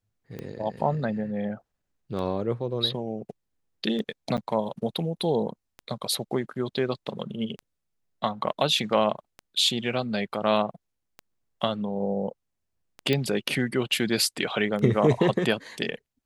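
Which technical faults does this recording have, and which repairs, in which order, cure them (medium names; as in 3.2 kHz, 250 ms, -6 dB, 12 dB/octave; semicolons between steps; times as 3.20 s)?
tick 33 1/3 rpm -23 dBFS
4.37–4.38 s: dropout 8.9 ms
13.13 s: pop -12 dBFS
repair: de-click; interpolate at 4.37 s, 8.9 ms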